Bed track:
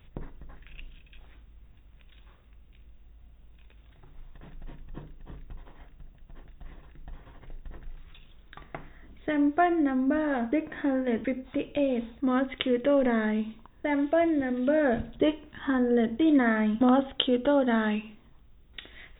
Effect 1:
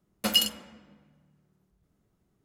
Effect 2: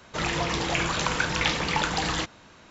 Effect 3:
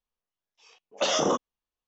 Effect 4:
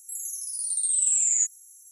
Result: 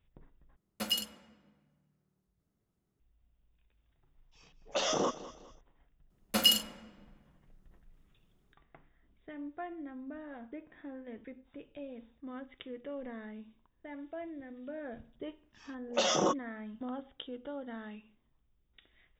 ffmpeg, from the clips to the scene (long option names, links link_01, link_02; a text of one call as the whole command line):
ffmpeg -i bed.wav -i cue0.wav -i cue1.wav -i cue2.wav -filter_complex "[1:a]asplit=2[link_01][link_02];[3:a]asplit=2[link_03][link_04];[0:a]volume=-18.5dB[link_05];[link_03]aecho=1:1:204|408|612:0.15|0.0539|0.0194[link_06];[link_02]asplit=2[link_07][link_08];[link_08]adelay=36,volume=-9dB[link_09];[link_07][link_09]amix=inputs=2:normalize=0[link_10];[link_04]aecho=1:1:5.5:0.42[link_11];[link_05]asplit=2[link_12][link_13];[link_12]atrim=end=0.564[link_14];[link_01]atrim=end=2.44,asetpts=PTS-STARTPTS,volume=-9dB[link_15];[link_13]atrim=start=2.996[link_16];[link_06]atrim=end=1.87,asetpts=PTS-STARTPTS,volume=-6.5dB,afade=type=in:duration=0.004:curve=hsin,afade=type=out:start_time=1.866:duration=0.004:curve=hsin,adelay=3740[link_17];[link_10]atrim=end=2.44,asetpts=PTS-STARTPTS,volume=-2dB,afade=type=in:duration=0.004:curve=hsin,afade=type=out:start_time=2.436:duration=0.004:curve=hsin,adelay=269010S[link_18];[link_11]atrim=end=1.87,asetpts=PTS-STARTPTS,volume=-5dB,afade=type=in:duration=0.004:curve=hsin,afade=type=out:start_time=1.866:duration=0.004:curve=hsin,adelay=14960[link_19];[link_14][link_15]acrossfade=duration=0.004:curve1=hsin:curve2=hsin[link_20];[link_20][link_16]acrossfade=duration=0.004:curve1=hsin:curve2=hsin[link_21];[link_21][link_17][link_18][link_19]amix=inputs=4:normalize=0" out.wav